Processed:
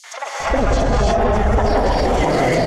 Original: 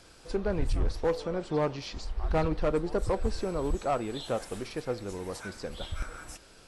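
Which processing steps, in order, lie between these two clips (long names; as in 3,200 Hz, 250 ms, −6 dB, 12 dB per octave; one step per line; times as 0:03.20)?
camcorder AGC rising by 5.7 dB per second
dynamic equaliser 670 Hz, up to +4 dB, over −39 dBFS, Q 0.76
downward compressor 10 to 1, threshold −33 dBFS, peak gain reduction 13.5 dB
phase-vocoder stretch with locked phases 0.54×
hard clipping −30.5 dBFS, distortion −22 dB
high-frequency loss of the air 160 metres
three-band delay without the direct sound highs, mids, lows 50/540 ms, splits 640/3,400 Hz
reverb whose tail is shaped and stops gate 460 ms rising, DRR −4.5 dB
wrong playback speed 33 rpm record played at 45 rpm
boost into a limiter +32.5 dB
every ending faded ahead of time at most 150 dB per second
level −7 dB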